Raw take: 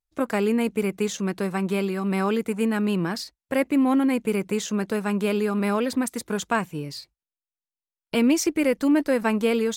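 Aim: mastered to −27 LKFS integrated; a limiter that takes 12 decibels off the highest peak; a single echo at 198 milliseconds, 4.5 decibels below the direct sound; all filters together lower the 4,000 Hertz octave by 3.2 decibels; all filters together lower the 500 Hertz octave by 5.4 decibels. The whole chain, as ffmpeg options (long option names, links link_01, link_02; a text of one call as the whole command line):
ffmpeg -i in.wav -af "equalizer=frequency=500:width_type=o:gain=-6.5,equalizer=frequency=4000:width_type=o:gain=-4.5,alimiter=limit=-24dB:level=0:latency=1,aecho=1:1:198:0.596,volume=4dB" out.wav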